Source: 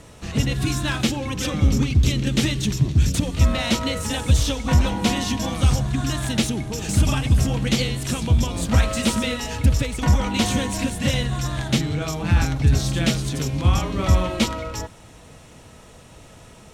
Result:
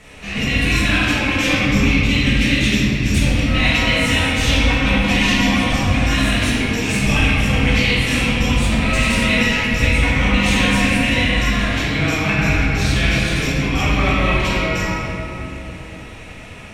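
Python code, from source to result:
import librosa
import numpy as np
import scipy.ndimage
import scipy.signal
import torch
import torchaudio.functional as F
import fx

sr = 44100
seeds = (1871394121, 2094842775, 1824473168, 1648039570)

y = fx.peak_eq(x, sr, hz=2300.0, db=14.5, octaves=1.0)
y = fx.over_compress(y, sr, threshold_db=-18.0, ratio=-0.5)
y = fx.room_shoebox(y, sr, seeds[0], volume_m3=160.0, walls='hard', distance_m=1.5)
y = y * librosa.db_to_amplitude(-7.5)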